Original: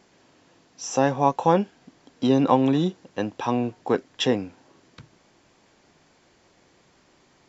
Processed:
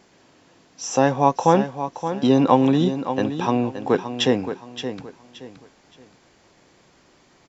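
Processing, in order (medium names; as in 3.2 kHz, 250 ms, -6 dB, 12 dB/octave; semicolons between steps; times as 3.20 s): feedback delay 572 ms, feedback 29%, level -10 dB; trim +3 dB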